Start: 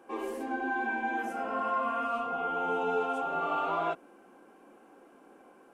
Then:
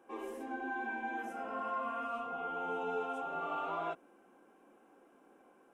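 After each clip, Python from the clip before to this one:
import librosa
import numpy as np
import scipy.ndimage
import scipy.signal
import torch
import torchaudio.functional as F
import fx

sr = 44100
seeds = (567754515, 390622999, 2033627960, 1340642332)

y = fx.notch(x, sr, hz=4500.0, q=7.6)
y = F.gain(torch.from_numpy(y), -7.0).numpy()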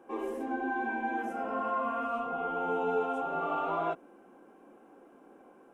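y = fx.tilt_shelf(x, sr, db=4.0, hz=1300.0)
y = F.gain(torch.from_numpy(y), 4.5).numpy()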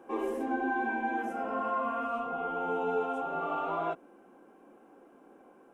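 y = fx.rider(x, sr, range_db=10, speed_s=2.0)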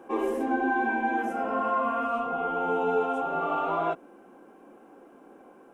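y = fx.attack_slew(x, sr, db_per_s=550.0)
y = F.gain(torch.from_numpy(y), 5.0).numpy()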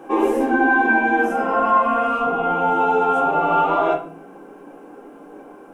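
y = fx.room_shoebox(x, sr, seeds[0], volume_m3=41.0, walls='mixed', distance_m=0.53)
y = F.gain(torch.from_numpy(y), 7.5).numpy()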